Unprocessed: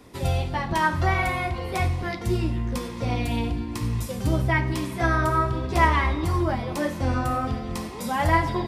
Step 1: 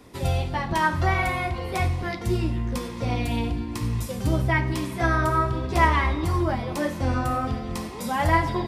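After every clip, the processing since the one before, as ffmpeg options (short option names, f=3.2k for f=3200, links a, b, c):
-af anull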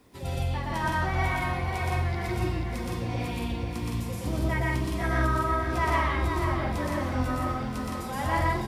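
-filter_complex "[0:a]asplit=2[a][b];[b]aecho=0:1:119.5|166.2:1|0.794[c];[a][c]amix=inputs=2:normalize=0,acrusher=bits=9:mix=0:aa=0.000001,asplit=2[d][e];[e]aecho=0:1:486|972|1458|1944|2430|2916|3402:0.447|0.25|0.14|0.0784|0.0439|0.0246|0.0138[f];[d][f]amix=inputs=2:normalize=0,volume=-9dB"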